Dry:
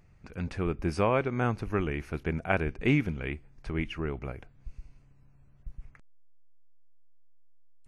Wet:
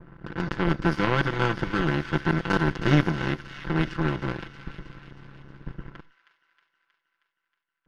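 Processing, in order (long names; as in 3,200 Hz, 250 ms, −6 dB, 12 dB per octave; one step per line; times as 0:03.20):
compressor on every frequency bin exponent 0.4
notch filter 1,200 Hz, Q 7.2
comb filter 5.9 ms, depth 93%
noise gate with hold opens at −26 dBFS
low-pass that shuts in the quiet parts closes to 870 Hz, open at −16.5 dBFS
phaser with its sweep stopped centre 2,400 Hz, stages 6
power curve on the samples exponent 2
on a send: delay with a high-pass on its return 316 ms, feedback 62%, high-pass 1,800 Hz, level −9.5 dB
on the sum: level +7 dB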